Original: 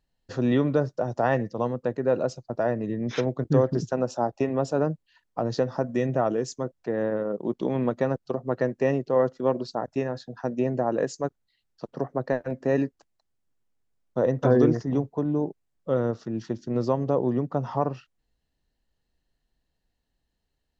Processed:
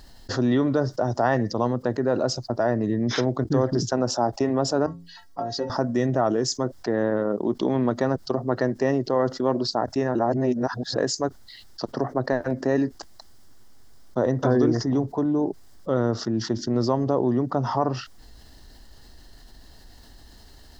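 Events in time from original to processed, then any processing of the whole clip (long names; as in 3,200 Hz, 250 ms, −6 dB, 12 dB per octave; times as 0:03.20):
0:04.86–0:05.70: stiff-string resonator 81 Hz, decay 0.39 s, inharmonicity 0.03
0:10.15–0:10.96: reverse
whole clip: thirty-one-band graphic EQ 160 Hz −11 dB, 500 Hz −6 dB, 2,500 Hz −10 dB, 5,000 Hz +7 dB; envelope flattener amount 50%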